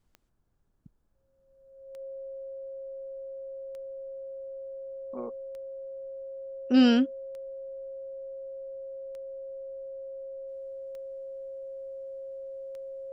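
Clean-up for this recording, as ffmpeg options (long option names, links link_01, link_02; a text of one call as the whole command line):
ffmpeg -i in.wav -af "adeclick=threshold=4,bandreject=frequency=540:width=30,agate=range=-21dB:threshold=-58dB" out.wav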